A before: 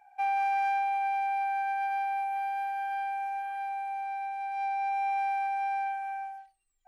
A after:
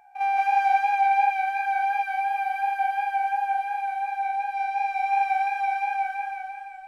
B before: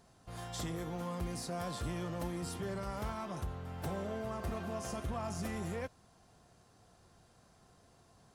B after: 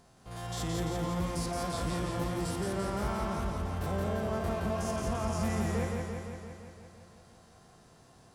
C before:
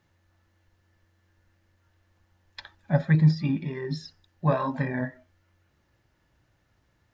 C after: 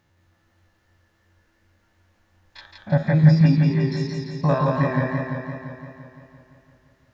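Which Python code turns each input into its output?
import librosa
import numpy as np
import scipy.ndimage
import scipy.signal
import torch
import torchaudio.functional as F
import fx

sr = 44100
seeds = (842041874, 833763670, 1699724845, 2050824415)

y = fx.spec_steps(x, sr, hold_ms=50)
y = fx.echo_warbled(y, sr, ms=171, feedback_pct=67, rate_hz=2.8, cents=58, wet_db=-3)
y = y * librosa.db_to_amplitude(4.5)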